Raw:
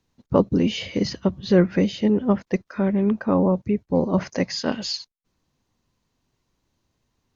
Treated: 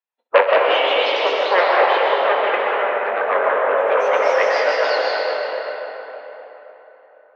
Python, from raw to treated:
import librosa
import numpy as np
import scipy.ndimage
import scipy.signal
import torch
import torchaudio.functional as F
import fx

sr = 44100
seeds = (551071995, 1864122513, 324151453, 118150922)

p1 = fx.bin_expand(x, sr, power=1.5)
p2 = fx.fold_sine(p1, sr, drive_db=14, ceiling_db=-4.5)
p3 = p1 + (p2 * 10.0 ** (-8.0 / 20.0))
p4 = fx.rev_freeverb(p3, sr, rt60_s=4.0, hf_ratio=0.6, predelay_ms=90, drr_db=-5.5)
p5 = fx.hpss(p4, sr, part='percussive', gain_db=8)
p6 = fx.rider(p5, sr, range_db=4, speed_s=0.5)
p7 = scipy.signal.sosfilt(scipy.signal.butter(4, 2900.0, 'lowpass', fs=sr, output='sos'), p6)
p8 = fx.echo_pitch(p7, sr, ms=212, semitones=2, count=2, db_per_echo=-6.0)
p9 = scipy.signal.sosfilt(scipy.signal.ellip(4, 1.0, 70, 490.0, 'highpass', fs=sr, output='sos'), p8)
p10 = p9 + fx.room_early_taps(p9, sr, ms=(22, 64), db=(-9.0, -12.5), dry=0)
y = p10 * 10.0 ** (-5.0 / 20.0)